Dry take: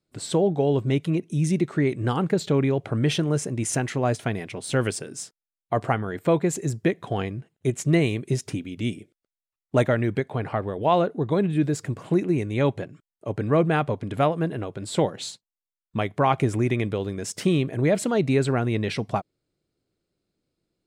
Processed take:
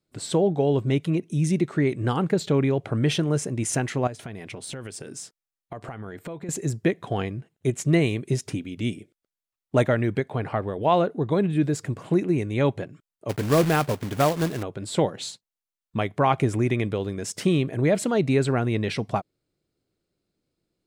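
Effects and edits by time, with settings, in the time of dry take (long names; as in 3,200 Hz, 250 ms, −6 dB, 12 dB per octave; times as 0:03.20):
0:04.07–0:06.49: downward compressor 10 to 1, threshold −32 dBFS
0:13.29–0:14.63: log-companded quantiser 4 bits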